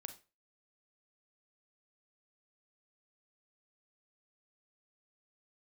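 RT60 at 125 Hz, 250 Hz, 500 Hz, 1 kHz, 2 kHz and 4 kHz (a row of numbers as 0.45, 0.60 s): 0.35, 0.30, 0.35, 0.30, 0.30, 0.25 s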